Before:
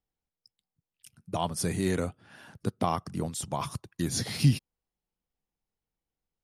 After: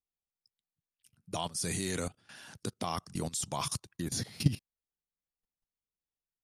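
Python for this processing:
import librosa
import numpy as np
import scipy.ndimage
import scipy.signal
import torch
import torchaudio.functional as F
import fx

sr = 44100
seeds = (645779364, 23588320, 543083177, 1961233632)

y = fx.peak_eq(x, sr, hz=6600.0, db=14.0, octaves=2.6, at=(1.31, 3.89))
y = fx.level_steps(y, sr, step_db=17)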